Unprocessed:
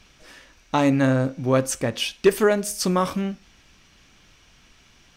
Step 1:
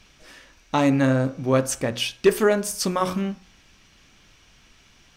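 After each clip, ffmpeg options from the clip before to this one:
-af "bandreject=f=60.7:t=h:w=4,bandreject=f=121.4:t=h:w=4,bandreject=f=182.1:t=h:w=4,bandreject=f=242.8:t=h:w=4,bandreject=f=303.5:t=h:w=4,bandreject=f=364.2:t=h:w=4,bandreject=f=424.9:t=h:w=4,bandreject=f=485.6:t=h:w=4,bandreject=f=546.3:t=h:w=4,bandreject=f=607:t=h:w=4,bandreject=f=667.7:t=h:w=4,bandreject=f=728.4:t=h:w=4,bandreject=f=789.1:t=h:w=4,bandreject=f=849.8:t=h:w=4,bandreject=f=910.5:t=h:w=4,bandreject=f=971.2:t=h:w=4,bandreject=f=1.0319k:t=h:w=4,bandreject=f=1.0926k:t=h:w=4,bandreject=f=1.1533k:t=h:w=4,bandreject=f=1.214k:t=h:w=4,bandreject=f=1.2747k:t=h:w=4,bandreject=f=1.3354k:t=h:w=4,bandreject=f=1.3961k:t=h:w=4,bandreject=f=1.4568k:t=h:w=4,bandreject=f=1.5175k:t=h:w=4,bandreject=f=1.5782k:t=h:w=4,bandreject=f=1.6389k:t=h:w=4,bandreject=f=1.6996k:t=h:w=4"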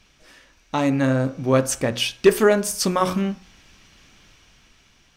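-af "dynaudnorm=f=470:g=5:m=11.5dB,volume=-3dB"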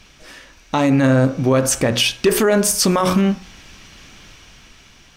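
-af "alimiter=level_in=15.5dB:limit=-1dB:release=50:level=0:latency=1,volume=-6dB"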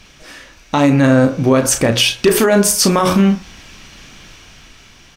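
-filter_complex "[0:a]asplit=2[a][b];[b]adelay=35,volume=-9dB[c];[a][c]amix=inputs=2:normalize=0,volume=3dB"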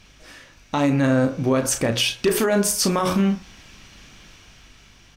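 -af "aeval=exprs='val(0)+0.00398*(sin(2*PI*50*n/s)+sin(2*PI*2*50*n/s)/2+sin(2*PI*3*50*n/s)/3+sin(2*PI*4*50*n/s)/4+sin(2*PI*5*50*n/s)/5)':c=same,volume=-7.5dB"

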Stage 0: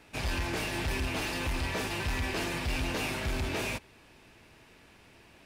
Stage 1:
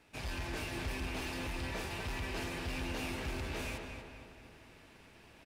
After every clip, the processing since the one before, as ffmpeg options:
-filter_complex "[0:a]areverse,acompressor=mode=upward:threshold=-44dB:ratio=2.5,areverse,asplit=2[a][b];[b]adelay=237,lowpass=f=3.4k:p=1,volume=-5dB,asplit=2[c][d];[d]adelay=237,lowpass=f=3.4k:p=1,volume=0.52,asplit=2[e][f];[f]adelay=237,lowpass=f=3.4k:p=1,volume=0.52,asplit=2[g][h];[h]adelay=237,lowpass=f=3.4k:p=1,volume=0.52,asplit=2[i][j];[j]adelay=237,lowpass=f=3.4k:p=1,volume=0.52,asplit=2[k][l];[l]adelay=237,lowpass=f=3.4k:p=1,volume=0.52,asplit=2[m][n];[n]adelay=237,lowpass=f=3.4k:p=1,volume=0.52[o];[a][c][e][g][i][k][m][o]amix=inputs=8:normalize=0,volume=-8dB"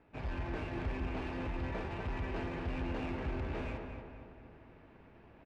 -af "highshelf=f=2.6k:g=-10.5,adynamicsmooth=sensitivity=8:basefreq=2.3k,volume=2.5dB"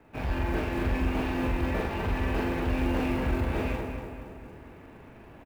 -filter_complex "[0:a]acrossover=split=120|1800[a][b][c];[b]acrusher=bits=6:mode=log:mix=0:aa=0.000001[d];[a][d][c]amix=inputs=3:normalize=0,asplit=2[e][f];[f]adelay=43,volume=-2.5dB[g];[e][g]amix=inputs=2:normalize=0,volume=7.5dB"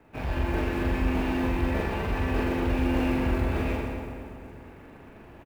-af "aecho=1:1:124:0.562"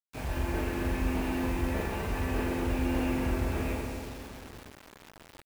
-af "acrusher=bits=6:mix=0:aa=0.000001,volume=-4dB"

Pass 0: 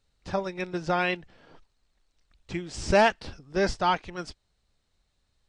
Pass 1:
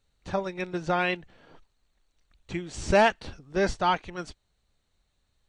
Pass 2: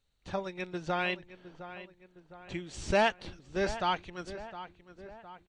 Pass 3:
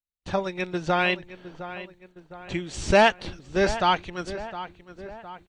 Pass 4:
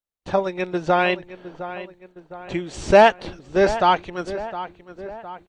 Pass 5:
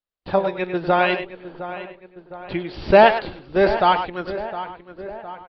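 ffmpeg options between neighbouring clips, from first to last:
-af "bandreject=f=5.1k:w=6.7"
-filter_complex "[0:a]equalizer=f=3.3k:t=o:w=0.92:g=4,asplit=2[a][b];[b]adelay=711,lowpass=f=2.6k:p=1,volume=-13dB,asplit=2[c][d];[d]adelay=711,lowpass=f=2.6k:p=1,volume=0.53,asplit=2[e][f];[f]adelay=711,lowpass=f=2.6k:p=1,volume=0.53,asplit=2[g][h];[h]adelay=711,lowpass=f=2.6k:p=1,volume=0.53,asplit=2[i][j];[j]adelay=711,lowpass=f=2.6k:p=1,volume=0.53[k];[a][c][e][g][i][k]amix=inputs=6:normalize=0,volume=-6dB"
-af "agate=range=-33dB:threshold=-56dB:ratio=3:detection=peak,volume=8.5dB"
-af "equalizer=f=570:t=o:w=2.7:g=8,volume=-1.5dB"
-filter_complex "[0:a]flanger=delay=1.2:depth=6.9:regen=90:speed=0.78:shape=triangular,asplit=2[a][b];[b]adelay=100,highpass=300,lowpass=3.4k,asoftclip=type=hard:threshold=-15.5dB,volume=-8dB[c];[a][c]amix=inputs=2:normalize=0,aresample=11025,aresample=44100,volume=5dB"

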